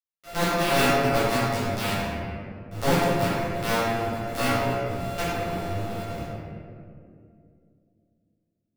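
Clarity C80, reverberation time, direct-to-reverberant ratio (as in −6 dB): −1.5 dB, 2.5 s, −14.0 dB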